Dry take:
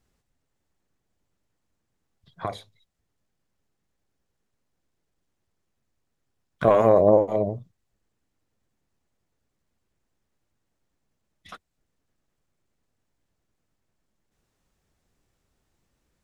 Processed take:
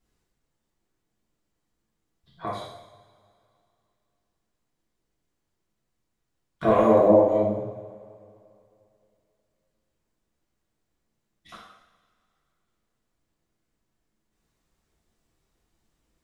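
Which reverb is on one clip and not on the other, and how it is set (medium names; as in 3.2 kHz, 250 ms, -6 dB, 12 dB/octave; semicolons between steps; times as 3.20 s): two-slope reverb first 0.81 s, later 2.7 s, from -18 dB, DRR -6 dB; trim -7 dB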